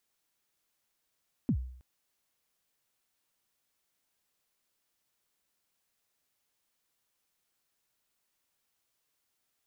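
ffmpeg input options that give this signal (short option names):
-f lavfi -i "aevalsrc='0.0794*pow(10,-3*t/0.62)*sin(2*PI*(290*0.077/log(63/290)*(exp(log(63/290)*min(t,0.077)/0.077)-1)+63*max(t-0.077,0)))':d=0.32:s=44100"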